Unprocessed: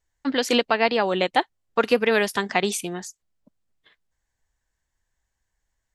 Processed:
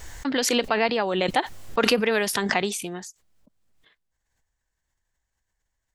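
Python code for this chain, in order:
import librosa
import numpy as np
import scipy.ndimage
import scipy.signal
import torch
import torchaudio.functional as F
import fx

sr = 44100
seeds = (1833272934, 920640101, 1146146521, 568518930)

y = fx.pre_swell(x, sr, db_per_s=34.0)
y = y * 10.0 ** (-3.0 / 20.0)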